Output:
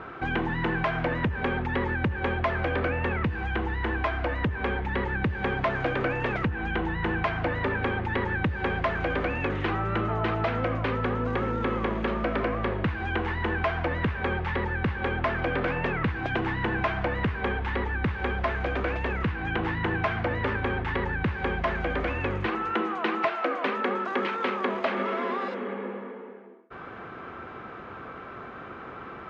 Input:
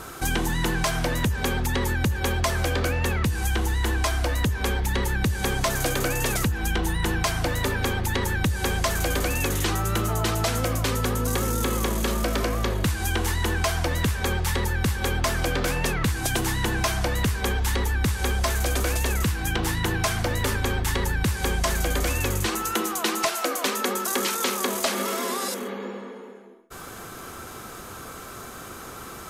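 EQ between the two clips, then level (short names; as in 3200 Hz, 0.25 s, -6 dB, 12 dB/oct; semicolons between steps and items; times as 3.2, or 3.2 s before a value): HPF 130 Hz 6 dB/oct; LPF 2500 Hz 24 dB/oct; 0.0 dB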